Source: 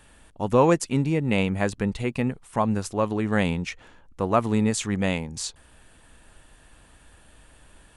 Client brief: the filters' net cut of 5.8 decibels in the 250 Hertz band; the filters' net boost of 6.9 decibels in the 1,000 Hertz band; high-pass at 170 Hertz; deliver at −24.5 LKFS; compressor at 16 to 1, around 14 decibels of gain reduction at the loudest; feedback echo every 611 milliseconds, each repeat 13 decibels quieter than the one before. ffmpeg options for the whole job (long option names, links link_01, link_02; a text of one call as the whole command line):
ffmpeg -i in.wav -af "highpass=170,equalizer=frequency=250:width_type=o:gain=-6.5,equalizer=frequency=1000:width_type=o:gain=8.5,acompressor=threshold=-24dB:ratio=16,aecho=1:1:611|1222|1833:0.224|0.0493|0.0108,volume=6.5dB" out.wav